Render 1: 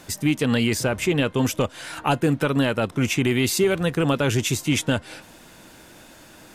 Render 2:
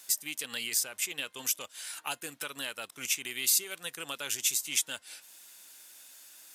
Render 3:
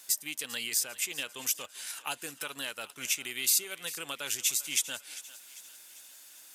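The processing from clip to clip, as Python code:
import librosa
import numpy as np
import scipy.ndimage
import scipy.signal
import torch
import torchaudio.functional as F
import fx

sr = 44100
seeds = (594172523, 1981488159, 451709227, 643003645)

y1 = np.diff(x, prepend=0.0)
y1 = fx.transient(y1, sr, attack_db=2, sustain_db=-3)
y2 = fx.echo_thinned(y1, sr, ms=397, feedback_pct=52, hz=650.0, wet_db=-16.5)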